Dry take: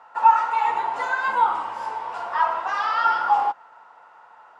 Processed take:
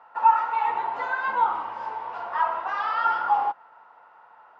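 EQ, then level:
high-frequency loss of the air 190 metres
−2.0 dB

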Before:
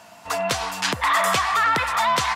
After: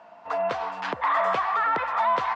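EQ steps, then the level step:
resonant band-pass 700 Hz, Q 0.83
high-frequency loss of the air 110 metres
0.0 dB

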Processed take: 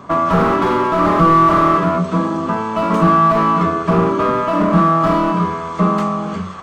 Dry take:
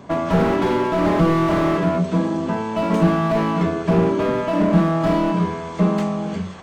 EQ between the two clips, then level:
parametric band 1,200 Hz +14.5 dB 0.4 octaves
+1.5 dB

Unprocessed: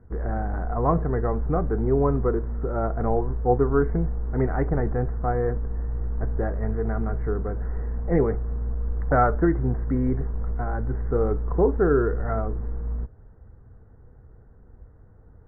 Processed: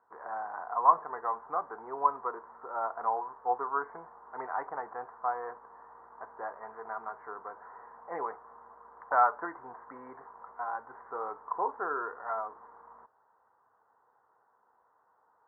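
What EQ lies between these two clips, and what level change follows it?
high-pass with resonance 980 Hz, resonance Q 4.6
low-pass filter 1,500 Hz 12 dB per octave
−5.5 dB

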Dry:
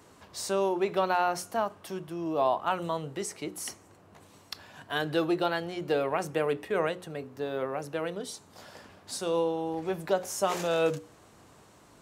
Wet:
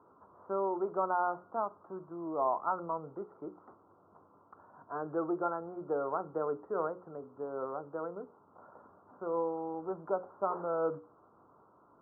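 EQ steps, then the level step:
Chebyshev low-pass with heavy ripple 1,400 Hz, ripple 3 dB
spectral tilt +3 dB per octave
−1.5 dB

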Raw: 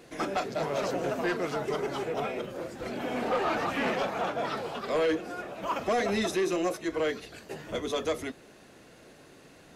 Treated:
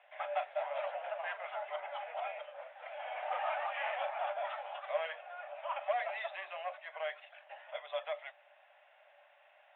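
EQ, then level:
Chebyshev high-pass with heavy ripple 570 Hz, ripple 6 dB
Butterworth low-pass 3,500 Hz 96 dB per octave
tilt shelving filter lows +5 dB, about 810 Hz
−1.5 dB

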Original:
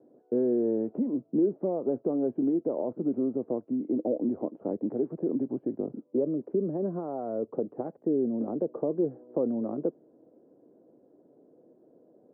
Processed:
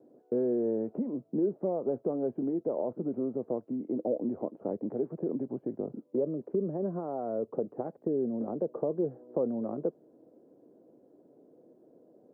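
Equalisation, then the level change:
dynamic equaliser 290 Hz, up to −6 dB, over −39 dBFS, Q 2
0.0 dB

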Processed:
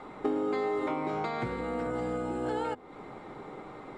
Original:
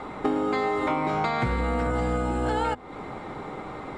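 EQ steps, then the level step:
parametric band 64 Hz −11 dB 0.55 octaves
dynamic equaliser 390 Hz, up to +7 dB, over −41 dBFS, Q 1.4
−9.0 dB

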